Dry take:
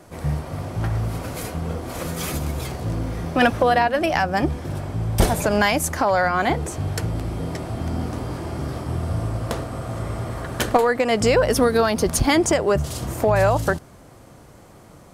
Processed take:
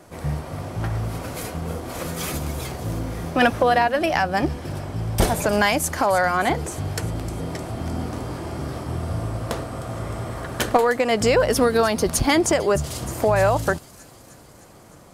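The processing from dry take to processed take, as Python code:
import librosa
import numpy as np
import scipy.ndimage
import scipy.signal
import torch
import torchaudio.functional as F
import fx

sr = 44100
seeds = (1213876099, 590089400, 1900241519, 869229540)

y = fx.low_shelf(x, sr, hz=200.0, db=-3.0)
y = fx.echo_wet_highpass(y, sr, ms=307, feedback_pct=66, hz=4700.0, wet_db=-12)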